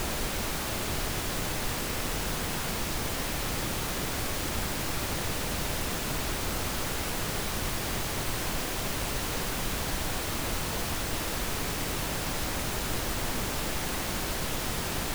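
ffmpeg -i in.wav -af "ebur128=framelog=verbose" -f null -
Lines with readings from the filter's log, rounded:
Integrated loudness:
  I:         -30.9 LUFS
  Threshold: -40.9 LUFS
Loudness range:
  LRA:         0.1 LU
  Threshold: -50.9 LUFS
  LRA low:   -30.9 LUFS
  LRA high:  -30.8 LUFS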